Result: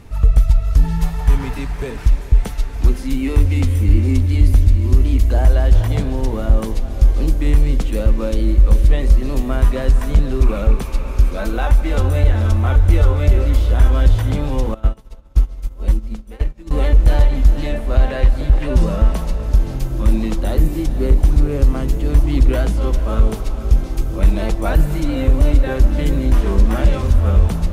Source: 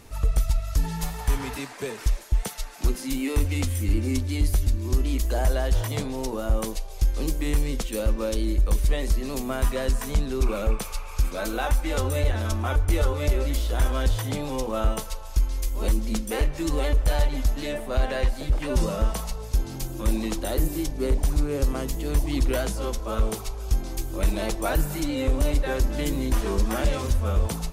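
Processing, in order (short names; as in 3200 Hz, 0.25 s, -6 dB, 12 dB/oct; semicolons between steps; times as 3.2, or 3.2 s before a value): tone controls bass +7 dB, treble -8 dB; on a send: diffused feedback echo 0.46 s, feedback 62%, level -12 dB; 14.74–16.71 on the sum: upward expander 2.5:1, over -27 dBFS; gain +3.5 dB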